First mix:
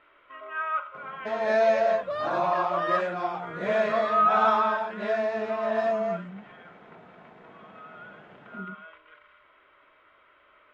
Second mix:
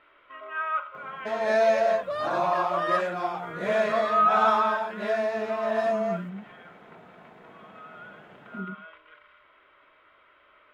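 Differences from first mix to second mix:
speech +4.0 dB; master: remove distance through air 76 m

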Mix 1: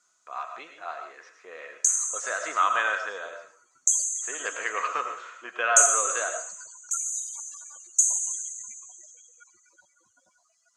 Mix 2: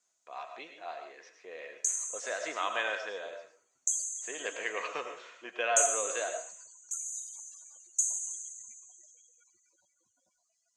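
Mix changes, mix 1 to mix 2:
background -8.0 dB; master: add peaking EQ 1.3 kHz -14.5 dB 0.7 oct

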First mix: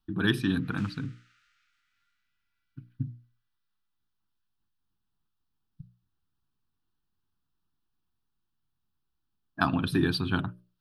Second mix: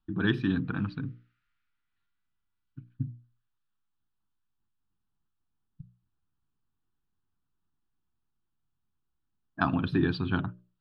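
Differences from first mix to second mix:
background -11.5 dB; master: add distance through air 240 m

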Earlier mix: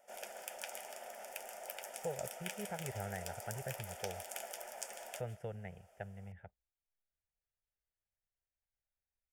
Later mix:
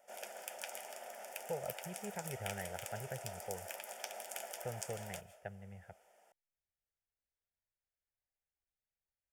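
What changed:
speech: entry -0.55 s; master: add bass shelf 77 Hz -7 dB

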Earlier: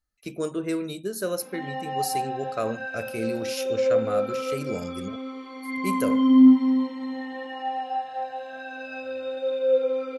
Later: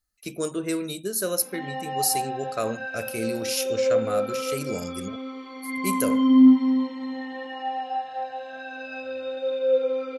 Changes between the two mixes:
background: add distance through air 110 m; master: add treble shelf 4.5 kHz +11 dB

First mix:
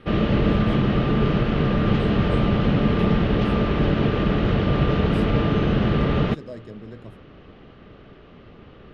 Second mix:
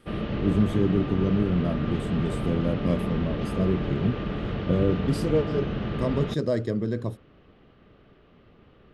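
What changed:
speech +12.0 dB; background -9.5 dB

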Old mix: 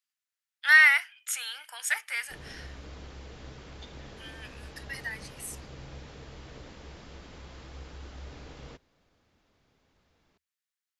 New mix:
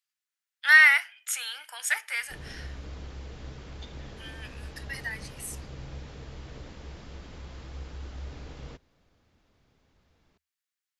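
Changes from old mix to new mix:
speech: send +11.5 dB; master: add bass shelf 170 Hz +6 dB

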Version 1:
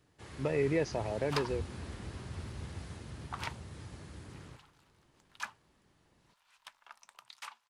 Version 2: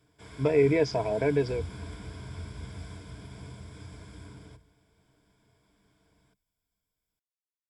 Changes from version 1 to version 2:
speech +5.0 dB; second sound: muted; master: add rippled EQ curve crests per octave 1.7, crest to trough 12 dB

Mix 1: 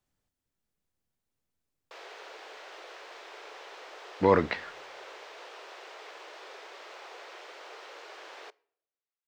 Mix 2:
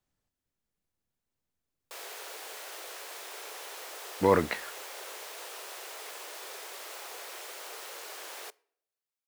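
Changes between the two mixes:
speech: send -9.5 dB; background: remove distance through air 180 m

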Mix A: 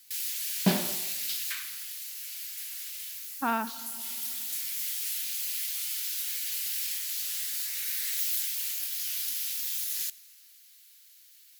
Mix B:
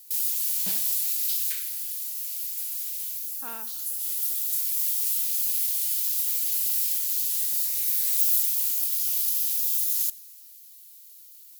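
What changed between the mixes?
speech: add peaking EQ 460 Hz +11.5 dB 0.8 oct; first sound +4.0 dB; master: add pre-emphasis filter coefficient 0.9

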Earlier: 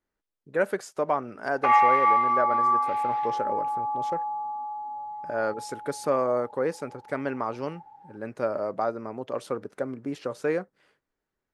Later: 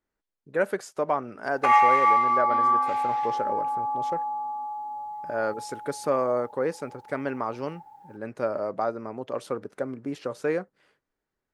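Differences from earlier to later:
first sound: remove distance through air 170 m; second sound +8.0 dB

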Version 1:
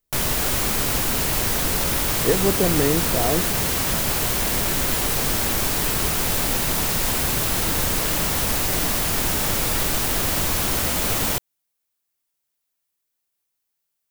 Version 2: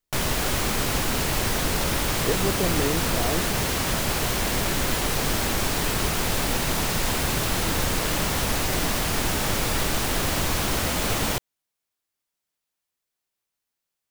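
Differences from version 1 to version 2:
speech -6.0 dB; background: add treble shelf 9.1 kHz -9.5 dB

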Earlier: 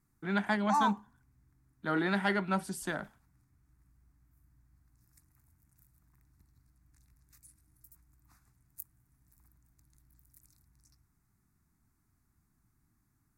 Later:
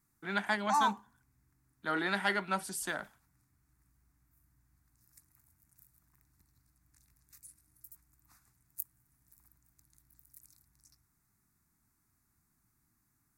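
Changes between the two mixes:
speech: add bass shelf 250 Hz -7 dB; master: add tilt EQ +1.5 dB/octave

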